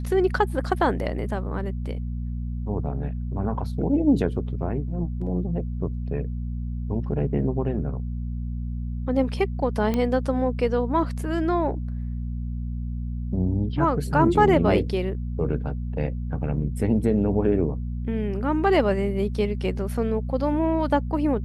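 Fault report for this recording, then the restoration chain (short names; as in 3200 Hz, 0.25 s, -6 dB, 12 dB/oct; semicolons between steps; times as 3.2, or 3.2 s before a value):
hum 60 Hz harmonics 4 -29 dBFS
9.94 pop -13 dBFS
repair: de-click; de-hum 60 Hz, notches 4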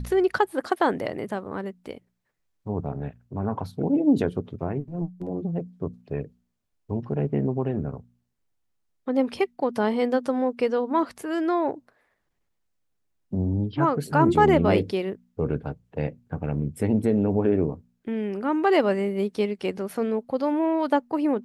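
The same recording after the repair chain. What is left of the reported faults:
none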